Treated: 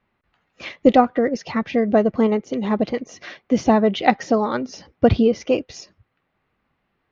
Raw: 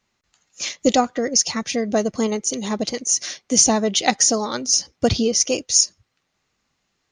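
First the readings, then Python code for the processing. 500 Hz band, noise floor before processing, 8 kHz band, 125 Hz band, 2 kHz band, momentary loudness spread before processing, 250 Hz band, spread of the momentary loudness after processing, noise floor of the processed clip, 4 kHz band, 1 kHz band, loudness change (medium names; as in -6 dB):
+4.0 dB, -73 dBFS, -26.0 dB, +4.0 dB, +0.5 dB, 8 LU, +4.0 dB, 16 LU, -73 dBFS, -12.5 dB, +3.5 dB, -0.5 dB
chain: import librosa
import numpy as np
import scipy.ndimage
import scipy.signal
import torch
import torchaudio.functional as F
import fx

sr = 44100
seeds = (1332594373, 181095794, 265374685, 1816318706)

y = scipy.signal.sosfilt(scipy.signal.bessel(4, 1900.0, 'lowpass', norm='mag', fs=sr, output='sos'), x)
y = y * 10.0 ** (4.0 / 20.0)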